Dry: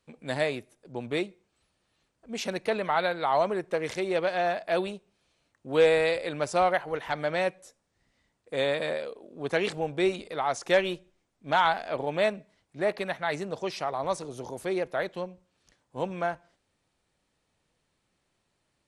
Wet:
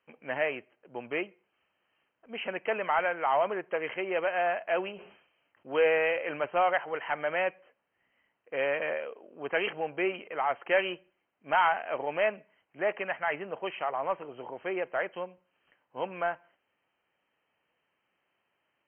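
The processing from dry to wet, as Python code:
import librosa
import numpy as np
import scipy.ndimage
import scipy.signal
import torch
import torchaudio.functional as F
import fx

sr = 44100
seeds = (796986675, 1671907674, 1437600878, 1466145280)

p1 = fx.highpass(x, sr, hz=250.0, slope=6)
p2 = fx.low_shelf(p1, sr, hz=410.0, db=-10.0)
p3 = 10.0 ** (-26.0 / 20.0) * np.tanh(p2 / 10.0 ** (-26.0 / 20.0))
p4 = p2 + F.gain(torch.from_numpy(p3), -4.0).numpy()
p5 = fx.brickwall_lowpass(p4, sr, high_hz=3200.0)
p6 = fx.sustainer(p5, sr, db_per_s=87.0, at=(4.93, 6.44), fade=0.02)
y = F.gain(torch.from_numpy(p6), -1.5).numpy()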